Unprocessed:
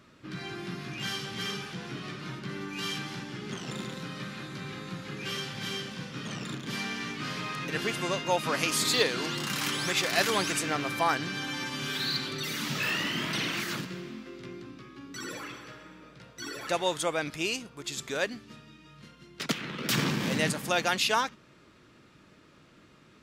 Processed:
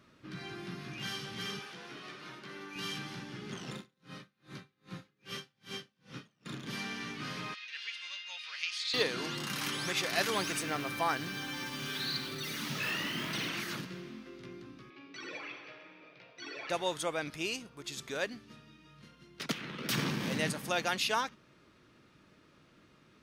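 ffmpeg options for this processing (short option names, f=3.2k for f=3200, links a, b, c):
-filter_complex "[0:a]asettb=1/sr,asplit=3[a][b][c];[a]atrim=end=1.594[d];[b]atrim=start=1.59:end=2.76,asetpts=PTS-STARTPTS,afade=t=in:d=0.004:c=qsin,afade=t=out:st=1.166:d=0.004:c=qsin,bass=f=250:g=-14,treble=f=4k:g=-1[e];[c]atrim=start=2.756[f];[d][e]acrossfade=d=0.004:c1=hsin:c2=qsin[g];[g][f]acrossfade=d=0.004:c1=qsin:c2=hsin,asettb=1/sr,asplit=3[h][i][j];[h]atrim=end=3.754[k];[i]atrim=start=3.75:end=6.46,asetpts=PTS-STARTPTS,afade=t=in:d=0.004:c=qsin,afade=t=out:st=2.706:d=0.004:c=qsin,aeval=exprs='val(0)*pow(10,-37*(0.5-0.5*cos(2*PI*2.5*n/s))/20)':c=same[l];[j]atrim=start=6.456[m];[k][l]acrossfade=d=0.004:c1=hsin:c2=qsin[n];[n][m]acrossfade=d=0.004:c1=qsin:c2=hsin,asettb=1/sr,asplit=3[o][p][q];[o]atrim=end=7.544[r];[p]atrim=start=7.54:end=8.94,asetpts=PTS-STARTPTS,afade=t=in:d=0.004:c=qsin,afade=t=out:st=1.396:d=0.004:c=qsin,asuperpass=centerf=3300:order=4:qfactor=1.1[s];[q]atrim=start=8.936[t];[r][s]acrossfade=d=0.004:c1=hsin:c2=qsin[u];[u][t]acrossfade=d=0.004:c1=qsin:c2=hsin,asettb=1/sr,asplit=3[v][w][x];[v]atrim=end=10.354[y];[w]atrim=start=10.35:end=13.49,asetpts=PTS-STARTPTS,afade=t=in:d=0.004:c=qsin,afade=t=out:st=3.136:d=0.004:c=qsin,acrusher=bits=8:dc=4:mix=0:aa=0.000001[z];[x]atrim=start=13.486[aa];[y][z]acrossfade=d=0.004:c1=hsin:c2=qsin[ab];[ab][aa]acrossfade=d=0.004:c1=qsin:c2=hsin,asettb=1/sr,asplit=3[ac][ad][ae];[ac]atrim=end=14.904[af];[ad]atrim=start=14.9:end=16.7,asetpts=PTS-STARTPTS,afade=t=in:d=0.004:c=qsin,afade=t=out:st=1.796:d=0.004:c=qsin,highpass=210,equalizer=f=220:t=q:w=4:g=-10,equalizer=f=680:t=q:w=4:g=6,equalizer=f=1.4k:t=q:w=4:g=-4,equalizer=f=2.4k:t=q:w=4:g=10,lowpass=f=5k:w=0.5412,lowpass=f=5k:w=1.3066[ag];[ae]atrim=start=16.696[ah];[af][ag]acrossfade=d=0.004:c1=hsin:c2=qsin[ai];[ai][ah]acrossfade=d=0.004:c1=qsin:c2=hsin,bandreject=f=7.4k:w=10,volume=-5dB"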